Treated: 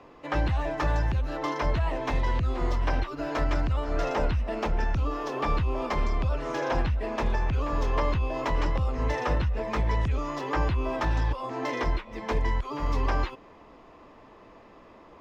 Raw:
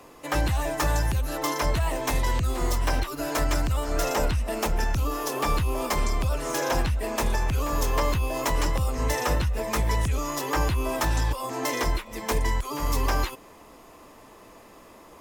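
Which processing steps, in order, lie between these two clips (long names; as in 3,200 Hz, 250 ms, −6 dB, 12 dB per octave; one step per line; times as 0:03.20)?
high-frequency loss of the air 220 metres
level −1 dB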